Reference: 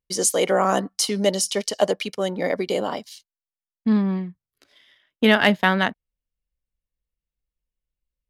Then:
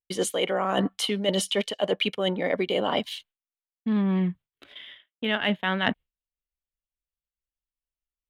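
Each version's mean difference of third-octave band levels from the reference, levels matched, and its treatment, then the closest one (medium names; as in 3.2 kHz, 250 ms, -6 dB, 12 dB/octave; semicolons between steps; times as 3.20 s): 5.0 dB: gate with hold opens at -46 dBFS; resonant high shelf 4.1 kHz -8.5 dB, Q 3; reverse; compression 12:1, threshold -30 dBFS, peak gain reduction 21 dB; reverse; trim +8.5 dB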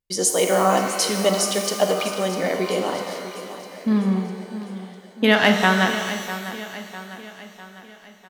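8.5 dB: de-hum 50.09 Hz, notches 9; on a send: feedback delay 651 ms, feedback 50%, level -13 dB; on the sum: pitch-shifted reverb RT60 1.7 s, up +12 st, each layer -8 dB, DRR 4.5 dB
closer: first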